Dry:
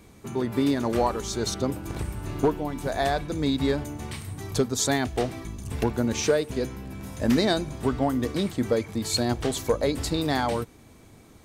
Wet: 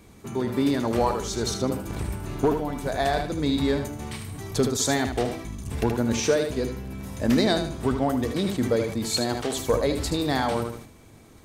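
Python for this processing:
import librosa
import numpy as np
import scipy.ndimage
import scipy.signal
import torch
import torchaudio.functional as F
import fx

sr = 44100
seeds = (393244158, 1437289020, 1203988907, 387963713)

y = fx.highpass(x, sr, hz=fx.line((9.1, 120.0), (9.53, 330.0)), slope=6, at=(9.1, 9.53), fade=0.02)
y = fx.echo_feedback(y, sr, ms=77, feedback_pct=27, wet_db=-8.5)
y = fx.sustainer(y, sr, db_per_s=82.0)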